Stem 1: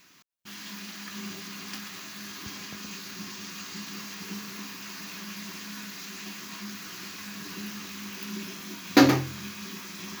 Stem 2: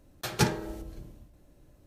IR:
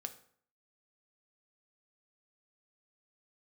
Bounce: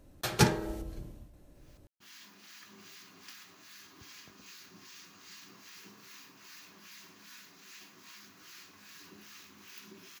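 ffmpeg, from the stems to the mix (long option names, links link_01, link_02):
-filter_complex "[0:a]equalizer=frequency=200:width_type=o:width=0.26:gain=-11.5,acrossover=split=1100[link_01][link_02];[link_01]aeval=exprs='val(0)*(1-0.7/2+0.7/2*cos(2*PI*2.5*n/s))':channel_layout=same[link_03];[link_02]aeval=exprs='val(0)*(1-0.7/2-0.7/2*cos(2*PI*2.5*n/s))':channel_layout=same[link_04];[link_03][link_04]amix=inputs=2:normalize=0,adelay=1550,volume=-9.5dB[link_05];[1:a]volume=1dB[link_06];[link_05][link_06]amix=inputs=2:normalize=0"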